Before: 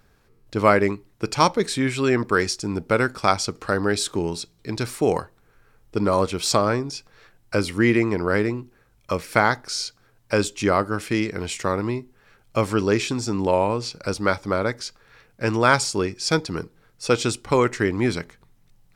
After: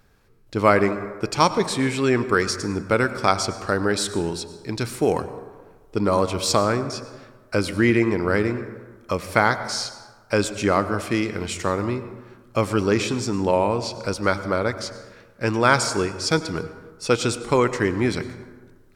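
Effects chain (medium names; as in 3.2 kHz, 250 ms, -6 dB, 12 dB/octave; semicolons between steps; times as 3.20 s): plate-style reverb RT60 1.4 s, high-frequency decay 0.45×, pre-delay 85 ms, DRR 12 dB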